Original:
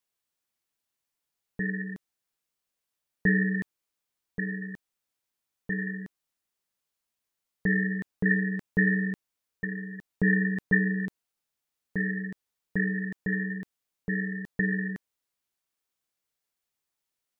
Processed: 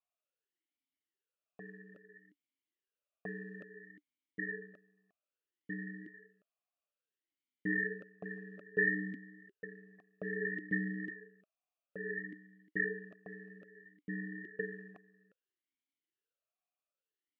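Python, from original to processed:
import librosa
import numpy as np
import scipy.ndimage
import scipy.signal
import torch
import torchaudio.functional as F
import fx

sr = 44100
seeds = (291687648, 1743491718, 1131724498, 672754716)

y = fx.quant_float(x, sr, bits=6)
y = y + 10.0 ** (-18.0 / 20.0) * np.pad(y, (int(355 * sr / 1000.0), 0))[:len(y)]
y = fx.vowel_sweep(y, sr, vowels='a-i', hz=0.6)
y = F.gain(torch.from_numpy(y), 4.0).numpy()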